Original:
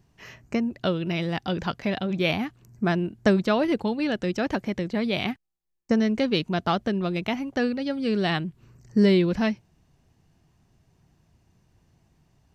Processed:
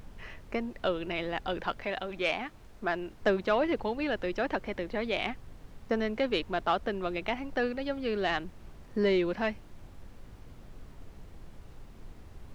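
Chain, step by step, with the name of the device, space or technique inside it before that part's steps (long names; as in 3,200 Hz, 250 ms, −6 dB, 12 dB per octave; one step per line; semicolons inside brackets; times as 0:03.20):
aircraft cabin announcement (band-pass filter 390–3,100 Hz; soft clipping −14 dBFS, distortion −22 dB; brown noise bed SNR 12 dB)
0:01.83–0:03.21: low-shelf EQ 360 Hz −6 dB
level −1 dB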